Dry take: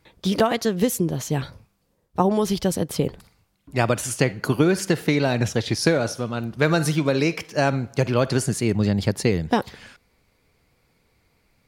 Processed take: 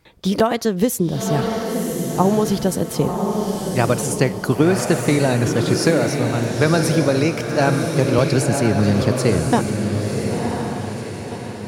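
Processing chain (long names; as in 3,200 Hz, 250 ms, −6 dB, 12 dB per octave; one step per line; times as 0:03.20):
feedback delay with all-pass diffusion 1,031 ms, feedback 43%, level −3.5 dB
dynamic equaliser 2,800 Hz, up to −4 dB, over −39 dBFS, Q 0.85
0:08.18–0:09.03: multiband upward and downward compressor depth 40%
level +3 dB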